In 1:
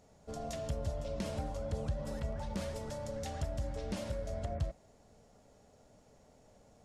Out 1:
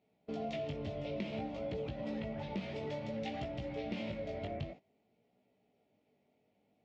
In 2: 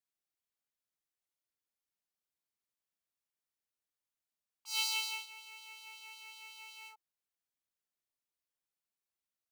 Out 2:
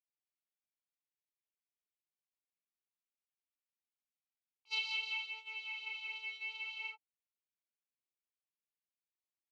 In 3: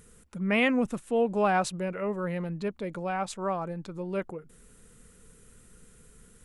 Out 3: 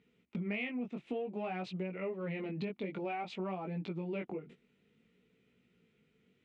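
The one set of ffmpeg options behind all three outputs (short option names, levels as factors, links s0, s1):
-filter_complex "[0:a]asplit=2[s0][s1];[s1]asoftclip=type=tanh:threshold=0.0631,volume=0.376[s2];[s0][s2]amix=inputs=2:normalize=0,equalizer=f=1100:w=1.6:g=-11,flanger=delay=16:depth=5:speed=0.55,highpass=200,equalizer=f=530:t=q:w=4:g=-7,equalizer=f=1600:t=q:w=4:g=-9,equalizer=f=2300:t=q:w=4:g=5,lowpass=f=3200:w=0.5412,lowpass=f=3200:w=1.3066,agate=range=0.158:threshold=0.00141:ratio=16:detection=peak,acompressor=threshold=0.00631:ratio=12,crystalizer=i=1:c=0,volume=2.82"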